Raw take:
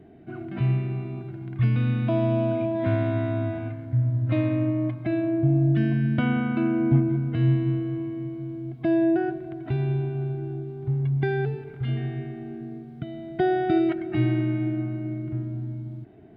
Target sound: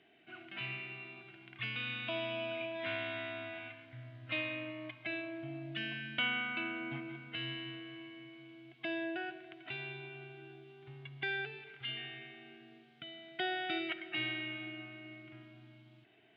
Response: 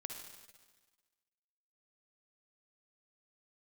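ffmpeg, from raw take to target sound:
-filter_complex "[0:a]bandpass=f=2900:t=q:w=2.8:csg=0,asplit=2[s0][s1];[1:a]atrim=start_sample=2205[s2];[s1][s2]afir=irnorm=-1:irlink=0,volume=0.501[s3];[s0][s3]amix=inputs=2:normalize=0,volume=2"

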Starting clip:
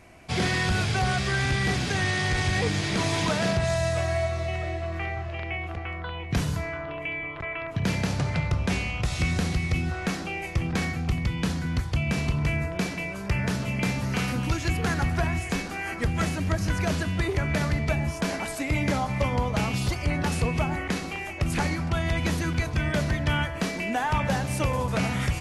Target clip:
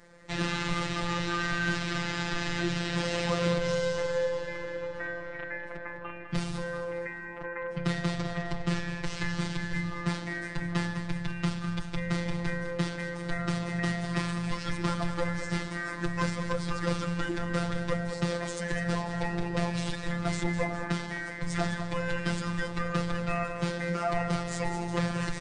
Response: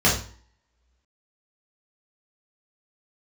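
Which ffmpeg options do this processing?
-af "asetrate=35002,aresample=44100,atempo=1.25992,aecho=1:1:204|408|612|816|1020:0.299|0.134|0.0605|0.0272|0.0122,afftfilt=real='hypot(re,im)*cos(PI*b)':imag='0':win_size=1024:overlap=0.75"

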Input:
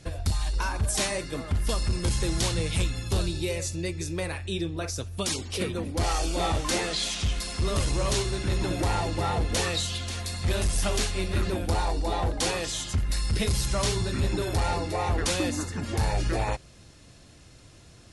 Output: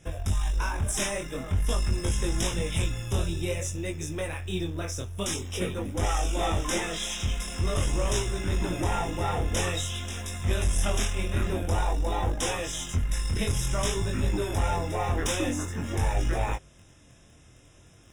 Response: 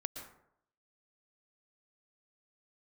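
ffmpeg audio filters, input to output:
-filter_complex "[0:a]asplit=2[s0][s1];[s1]acrusher=bits=4:dc=4:mix=0:aa=0.000001,volume=0.447[s2];[s0][s2]amix=inputs=2:normalize=0,flanger=delay=19.5:depth=5.5:speed=0.49,asuperstop=centerf=4400:order=8:qfactor=3.4"

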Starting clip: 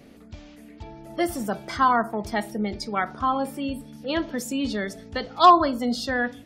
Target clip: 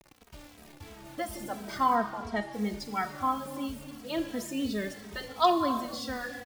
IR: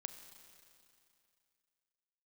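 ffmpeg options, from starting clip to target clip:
-filter_complex "[0:a]asettb=1/sr,asplit=3[s0][s1][s2];[s0]atrim=end=5.454[s3];[s1]atrim=start=5.45:end=5.85,asetpts=PTS-STARTPTS,afade=t=in:d=0.004:c=qsin,afade=t=out:st=0.396:d=0.004:c=qsin,highpass=59[s4];[s2]atrim=start=5.846[s5];[s3][s4]acrossfade=d=0.004:c1=hsin:c2=qsin[s6];[s6][s5]acrossfade=d=0.004:c1=qsin:c2=hsin,asplit=4[s7][s8][s9][s10];[s8]adelay=222,afreqshift=31,volume=0.0668[s11];[s9]adelay=444,afreqshift=62,volume=0.0295[s12];[s10]adelay=666,afreqshift=93,volume=0.0129[s13];[s7][s11][s12][s13]amix=inputs=4:normalize=0,acrusher=bits=6:mix=0:aa=0.000001,asplit=3[s14][s15][s16];[s14]afade=t=out:st=1.95:d=0.02[s17];[s15]adynamicsmooth=sensitivity=3:basefreq=5200,afade=t=in:st=1.95:d=0.02,afade=t=out:st=2.52:d=0.02[s18];[s16]afade=t=in:st=2.52:d=0.02[s19];[s17][s18][s19]amix=inputs=3:normalize=0[s20];[1:a]atrim=start_sample=2205,afade=t=out:st=0.4:d=0.01,atrim=end_sample=18081[s21];[s20][s21]afir=irnorm=-1:irlink=0,asplit=2[s22][s23];[s23]adelay=2.8,afreqshift=-2.9[s24];[s22][s24]amix=inputs=2:normalize=1"

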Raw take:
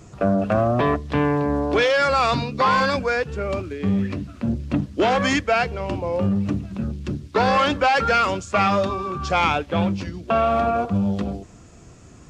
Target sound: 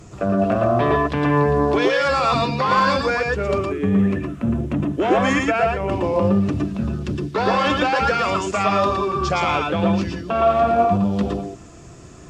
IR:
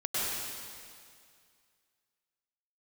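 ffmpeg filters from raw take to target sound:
-filter_complex "[0:a]asettb=1/sr,asplit=3[s0][s1][s2];[s0]atrim=end=3.584[s3];[s1]atrim=start=3.58:end=5.92,asetpts=PTS-STARTPTS,afade=t=in:d=0.004:c=qsin,afade=t=out:st=2.336:d=0.004:c=qsin,equalizer=f=4600:w=1.8:g=-12[s4];[s2]atrim=start=5.916[s5];[s3][s4]acrossfade=d=0.004:c1=hsin:c2=qsin[s6];[s6][s5]acrossfade=d=0.004:c1=qsin:c2=hsin,alimiter=limit=0.188:level=0:latency=1:release=60[s7];[1:a]atrim=start_sample=2205,afade=t=out:st=0.15:d=0.01,atrim=end_sample=7056,asetrate=37926,aresample=44100[s8];[s7][s8]afir=irnorm=-1:irlink=0,volume=1.5"

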